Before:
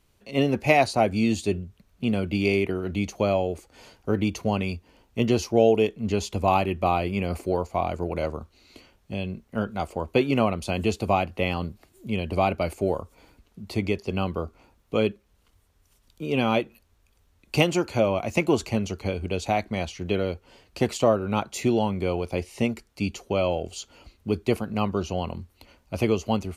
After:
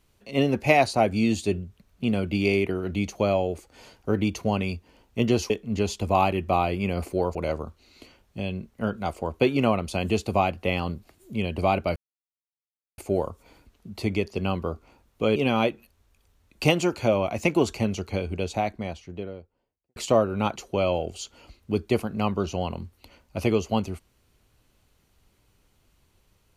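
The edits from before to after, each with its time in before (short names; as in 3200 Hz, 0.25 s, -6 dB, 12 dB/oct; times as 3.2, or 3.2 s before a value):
5.5–5.83 cut
7.68–8.09 cut
12.7 insert silence 1.02 s
15.08–16.28 cut
19.05–20.88 studio fade out
21.48–23.13 cut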